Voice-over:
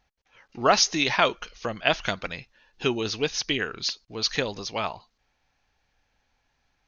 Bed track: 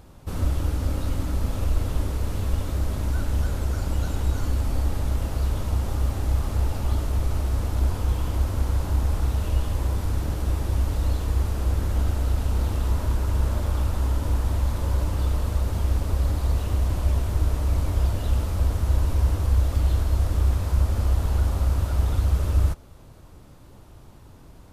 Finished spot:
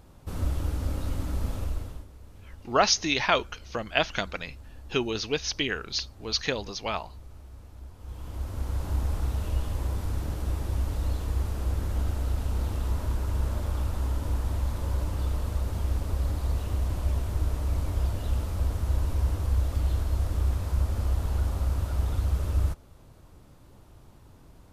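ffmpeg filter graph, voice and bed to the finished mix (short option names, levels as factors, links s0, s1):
-filter_complex "[0:a]adelay=2100,volume=0.794[s0];[1:a]volume=4.22,afade=t=out:st=1.5:d=0.56:silence=0.133352,afade=t=in:st=7.97:d=0.96:silence=0.141254[s1];[s0][s1]amix=inputs=2:normalize=0"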